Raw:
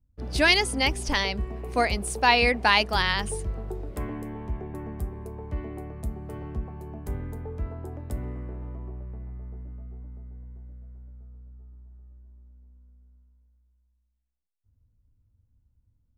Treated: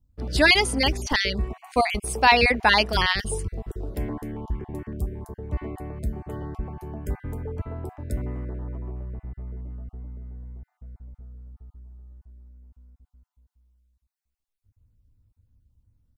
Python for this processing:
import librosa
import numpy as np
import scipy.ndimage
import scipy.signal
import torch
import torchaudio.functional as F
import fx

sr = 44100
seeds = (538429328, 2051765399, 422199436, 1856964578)

y = fx.spec_dropout(x, sr, seeds[0], share_pct=22)
y = fx.filter_held_notch(y, sr, hz=7.1, low_hz=670.0, high_hz=2500.0, at=(3.12, 5.52), fade=0.02)
y = y * 10.0 ** (3.5 / 20.0)